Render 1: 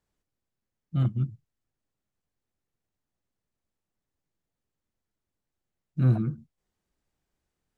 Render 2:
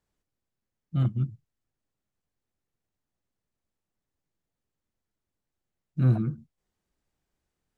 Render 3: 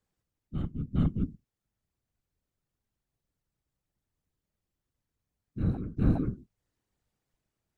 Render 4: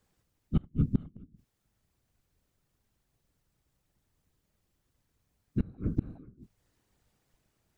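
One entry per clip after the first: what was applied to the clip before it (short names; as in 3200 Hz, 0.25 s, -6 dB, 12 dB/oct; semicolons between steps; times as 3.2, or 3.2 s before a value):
nothing audible
reverse echo 0.41 s -6 dB; whisperiser; gain -2 dB
flipped gate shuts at -23 dBFS, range -30 dB; gain +9 dB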